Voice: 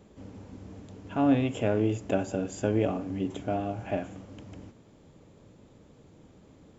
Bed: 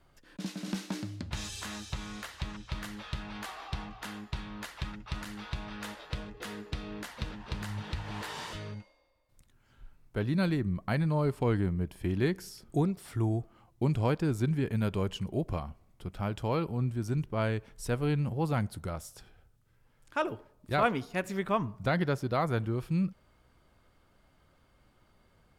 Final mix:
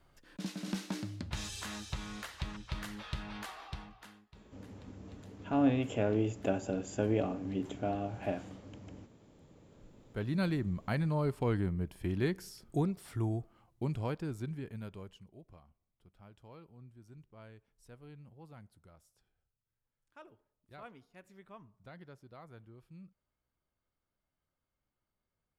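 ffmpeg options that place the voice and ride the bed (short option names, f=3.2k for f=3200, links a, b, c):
-filter_complex "[0:a]adelay=4350,volume=-4.5dB[a];[1:a]volume=17dB,afade=t=out:st=3.32:d=0.93:silence=0.0944061,afade=t=in:st=9.49:d=0.93:silence=0.112202,afade=t=out:st=13.06:d=2.27:silence=0.1[b];[a][b]amix=inputs=2:normalize=0"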